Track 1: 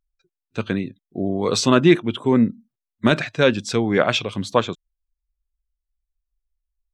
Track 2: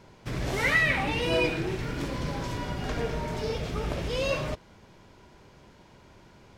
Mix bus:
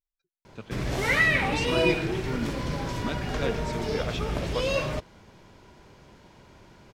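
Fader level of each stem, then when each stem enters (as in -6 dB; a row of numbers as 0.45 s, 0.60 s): -16.0 dB, +1.5 dB; 0.00 s, 0.45 s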